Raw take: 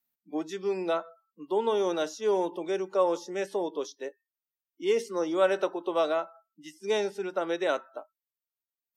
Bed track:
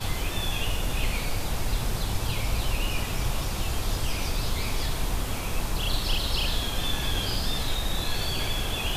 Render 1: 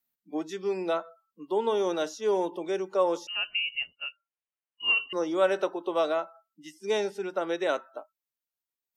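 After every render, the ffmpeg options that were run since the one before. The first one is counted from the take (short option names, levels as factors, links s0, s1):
-filter_complex "[0:a]asettb=1/sr,asplit=3[s0][s1][s2];[s0]atrim=end=3.274[s3];[s1]atrim=start=3.27:end=5.13,asetpts=PTS-STARTPTS,afade=t=in:d=0.004:c=qsin,afade=t=out:st=1.856:d=0.004:c=qsin,lowpass=f=2700:t=q:w=0.5098,lowpass=f=2700:t=q:w=0.6013,lowpass=f=2700:t=q:w=0.9,lowpass=f=2700:t=q:w=2.563,afreqshift=-3200[s4];[s2]atrim=start=5.126[s5];[s3][s4]acrossfade=d=0.004:c1=hsin:c2=qsin[s6];[s6][s5]acrossfade=d=0.004:c1=qsin:c2=hsin"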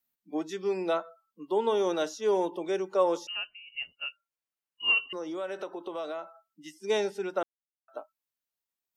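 -filter_complex "[0:a]asplit=3[s0][s1][s2];[s0]afade=t=out:st=4.99:d=0.02[s3];[s1]acompressor=threshold=0.0178:ratio=3:attack=3.2:release=140:knee=1:detection=peak,afade=t=in:st=4.99:d=0.02,afade=t=out:st=6.88:d=0.02[s4];[s2]afade=t=in:st=6.88:d=0.02[s5];[s3][s4][s5]amix=inputs=3:normalize=0,asplit=5[s6][s7][s8][s9][s10];[s6]atrim=end=3.54,asetpts=PTS-STARTPTS,afade=t=out:st=3.29:d=0.25:silence=0.105925[s11];[s7]atrim=start=3.54:end=3.66,asetpts=PTS-STARTPTS,volume=0.106[s12];[s8]atrim=start=3.66:end=7.43,asetpts=PTS-STARTPTS,afade=t=in:d=0.25:silence=0.105925,afade=t=out:st=3.766:d=0.004:c=hsin[s13];[s9]atrim=start=7.43:end=7.88,asetpts=PTS-STARTPTS,volume=0[s14];[s10]atrim=start=7.88,asetpts=PTS-STARTPTS,afade=t=in:d=0.004:c=hsin[s15];[s11][s12][s13][s14][s15]concat=n=5:v=0:a=1"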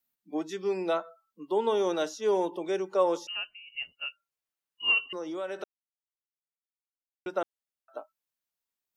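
-filter_complex "[0:a]asplit=3[s0][s1][s2];[s0]atrim=end=5.64,asetpts=PTS-STARTPTS,afade=t=out:st=5.636:d=0.004:c=hsin[s3];[s1]atrim=start=5.64:end=7.26,asetpts=PTS-STARTPTS,volume=0[s4];[s2]atrim=start=7.26,asetpts=PTS-STARTPTS,afade=t=in:d=0.004:c=hsin[s5];[s3][s4][s5]concat=n=3:v=0:a=1"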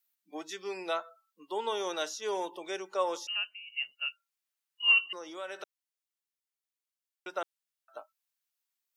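-af "highpass=f=770:p=1,tiltshelf=f=1100:g=-3"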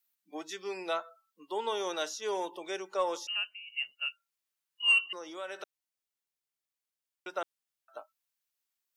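-af "asoftclip=type=tanh:threshold=0.168"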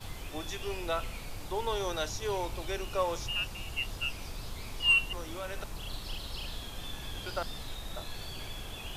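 -filter_complex "[1:a]volume=0.224[s0];[0:a][s0]amix=inputs=2:normalize=0"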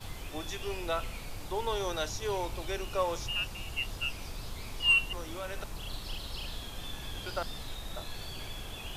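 -af anull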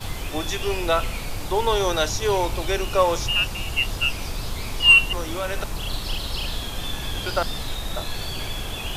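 -af "volume=3.76"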